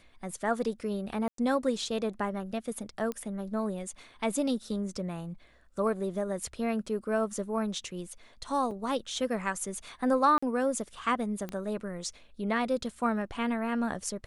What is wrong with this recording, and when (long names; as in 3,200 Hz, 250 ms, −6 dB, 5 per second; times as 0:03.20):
0:01.28–0:01.38: drop-out 103 ms
0:03.12: click −21 dBFS
0:08.71: drop-out 3.6 ms
0:10.38–0:10.43: drop-out 45 ms
0:11.49: click −23 dBFS